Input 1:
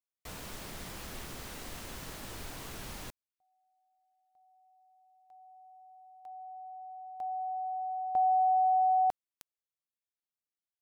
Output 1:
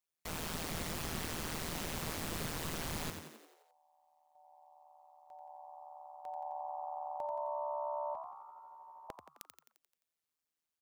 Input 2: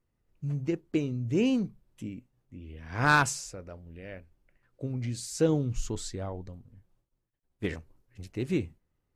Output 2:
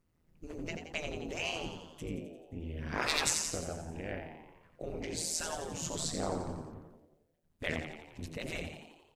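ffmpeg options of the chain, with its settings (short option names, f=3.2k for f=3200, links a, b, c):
-filter_complex "[0:a]tremolo=f=160:d=0.889,afftfilt=real='re*lt(hypot(re,im),0.0631)':imag='im*lt(hypot(re,im),0.0631)':win_size=1024:overlap=0.75,asplit=8[a][b][c][d][e][f][g][h];[b]adelay=87,afreqshift=69,volume=-7dB[i];[c]adelay=174,afreqshift=138,volume=-11.9dB[j];[d]adelay=261,afreqshift=207,volume=-16.8dB[k];[e]adelay=348,afreqshift=276,volume=-21.6dB[l];[f]adelay=435,afreqshift=345,volume=-26.5dB[m];[g]adelay=522,afreqshift=414,volume=-31.4dB[n];[h]adelay=609,afreqshift=483,volume=-36.3dB[o];[a][i][j][k][l][m][n][o]amix=inputs=8:normalize=0,volume=6.5dB"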